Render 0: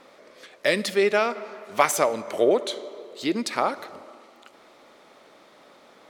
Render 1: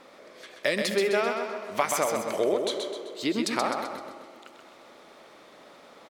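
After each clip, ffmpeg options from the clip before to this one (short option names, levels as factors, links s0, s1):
-filter_complex "[0:a]acompressor=threshold=0.0631:ratio=2.5,asplit=2[s0][s1];[s1]aecho=0:1:129|258|387|516|645|774:0.562|0.253|0.114|0.0512|0.0231|0.0104[s2];[s0][s2]amix=inputs=2:normalize=0"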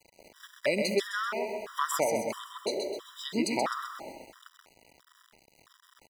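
-af "aeval=exprs='val(0)*gte(abs(val(0)),0.00596)':c=same,afftfilt=real='re*gt(sin(2*PI*1.5*pts/sr)*(1-2*mod(floor(b*sr/1024/980),2)),0)':imag='im*gt(sin(2*PI*1.5*pts/sr)*(1-2*mod(floor(b*sr/1024/980),2)),0)':win_size=1024:overlap=0.75"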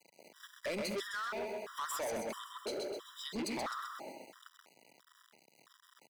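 -af "highpass=f=150:w=0.5412,highpass=f=150:w=1.3066,asoftclip=type=tanh:threshold=0.0299,volume=0.668"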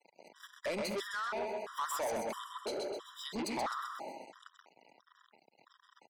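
-af "afftfilt=real='re*gte(hypot(re,im),0.000794)':imag='im*gte(hypot(re,im),0.000794)':win_size=1024:overlap=0.75,equalizer=f=860:t=o:w=0.78:g=6"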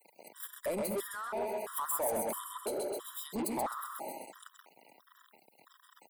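-filter_complex "[0:a]acrossover=split=850|1000[s0][s1][s2];[s2]acompressor=threshold=0.00282:ratio=6[s3];[s0][s1][s3]amix=inputs=3:normalize=0,aexciter=amount=12.6:drive=4.7:freq=8400,volume=1.33"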